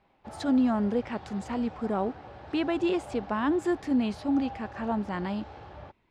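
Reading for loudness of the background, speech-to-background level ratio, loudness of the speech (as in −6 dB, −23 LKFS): −45.0 LKFS, 15.5 dB, −29.5 LKFS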